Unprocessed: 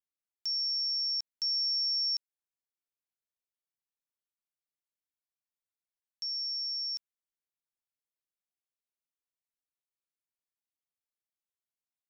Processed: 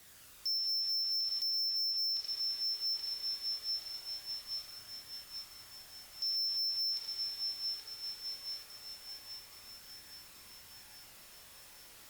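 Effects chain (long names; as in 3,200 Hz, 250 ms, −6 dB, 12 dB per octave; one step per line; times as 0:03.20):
in parallel at −9 dB: bit-depth reduction 8 bits, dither triangular
on the sum: frequency shifter −120 Hz
flanger 0.2 Hz, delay 0.5 ms, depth 2.1 ms, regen +50%
on a send: delay with a low-pass on its return 826 ms, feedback 60%, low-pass 4,000 Hz, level −3.5 dB
on the sum: four-comb reverb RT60 1.5 s, combs from 27 ms, DRR 1.5 dB
downward compressor, threshold −32 dBFS, peak gain reduction 8.5 dB
hard clipping −38 dBFS, distortion −9 dB
dynamic equaliser 4,000 Hz, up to +4 dB, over −52 dBFS, Q 1.2
level +3 dB
Opus 64 kbit/s 48,000 Hz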